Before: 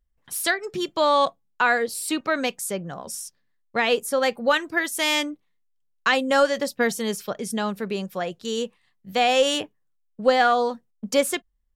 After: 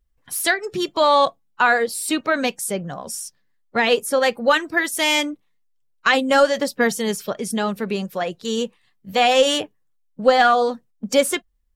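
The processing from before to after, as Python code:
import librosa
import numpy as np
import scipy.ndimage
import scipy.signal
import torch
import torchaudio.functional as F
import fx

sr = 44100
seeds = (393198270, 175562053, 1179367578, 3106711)

y = fx.spec_quant(x, sr, step_db=15)
y = y * librosa.db_to_amplitude(4.0)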